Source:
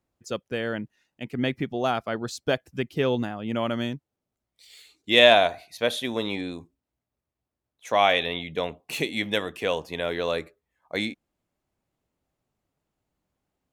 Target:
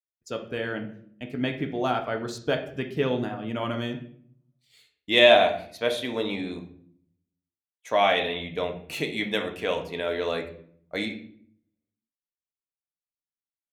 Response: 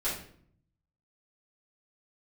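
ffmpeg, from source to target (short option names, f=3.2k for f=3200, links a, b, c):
-filter_complex "[0:a]agate=range=-33dB:threshold=-44dB:ratio=3:detection=peak,asplit=2[a][b];[1:a]atrim=start_sample=2205,lowpass=4.8k[c];[b][c]afir=irnorm=-1:irlink=0,volume=-8dB[d];[a][d]amix=inputs=2:normalize=0,volume=-4dB"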